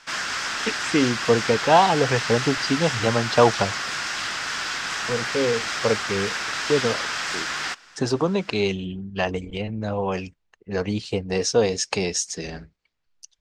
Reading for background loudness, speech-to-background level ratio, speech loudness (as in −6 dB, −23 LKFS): −26.0 LKFS, 2.0 dB, −24.0 LKFS